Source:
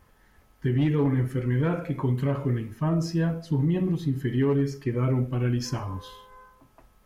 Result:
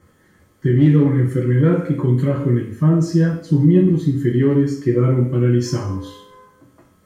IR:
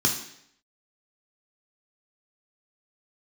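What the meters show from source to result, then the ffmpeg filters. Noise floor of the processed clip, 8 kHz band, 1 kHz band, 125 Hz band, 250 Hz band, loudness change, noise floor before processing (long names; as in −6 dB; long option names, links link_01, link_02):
−56 dBFS, can't be measured, +3.0 dB, +9.5 dB, +10.0 dB, +9.5 dB, −60 dBFS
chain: -filter_complex "[1:a]atrim=start_sample=2205,asetrate=57330,aresample=44100[link_01];[0:a][link_01]afir=irnorm=-1:irlink=0,volume=-5dB"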